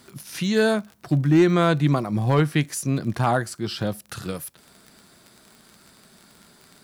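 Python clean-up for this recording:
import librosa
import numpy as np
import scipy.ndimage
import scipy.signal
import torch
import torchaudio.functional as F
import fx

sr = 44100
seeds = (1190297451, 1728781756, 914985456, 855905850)

y = fx.fix_declip(x, sr, threshold_db=-10.0)
y = fx.fix_declick_ar(y, sr, threshold=6.5)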